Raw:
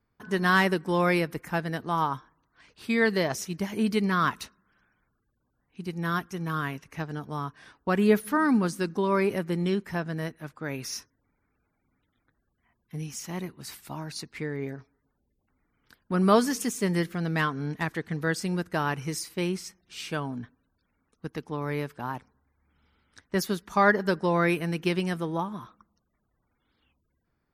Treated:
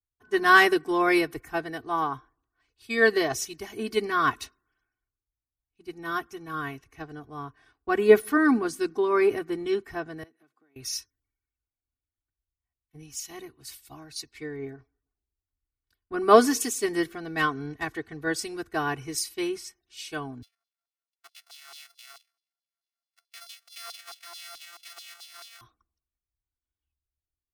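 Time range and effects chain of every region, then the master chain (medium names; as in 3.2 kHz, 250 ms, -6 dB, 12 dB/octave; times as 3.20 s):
10.23–10.76 s: compression 12:1, threshold -41 dBFS + ladder high-pass 190 Hz, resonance 20% + tone controls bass +4 dB, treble -1 dB
20.42–25.61 s: sorted samples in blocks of 64 samples + compression 4:1, threshold -36 dBFS + LFO high-pass saw down 4.6 Hz 960–4300 Hz
whole clip: comb 2.7 ms, depth 93%; three bands expanded up and down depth 70%; trim -3 dB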